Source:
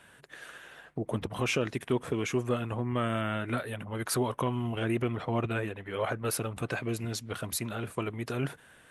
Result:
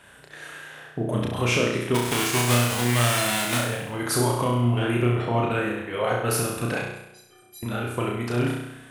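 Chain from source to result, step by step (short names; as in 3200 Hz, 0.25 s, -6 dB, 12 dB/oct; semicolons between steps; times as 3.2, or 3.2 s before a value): 1.94–3.57 spectral whitening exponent 0.3; 6.84–7.63 metallic resonator 360 Hz, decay 0.6 s, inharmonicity 0.03; flutter echo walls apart 5.7 m, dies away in 0.84 s; gain +4 dB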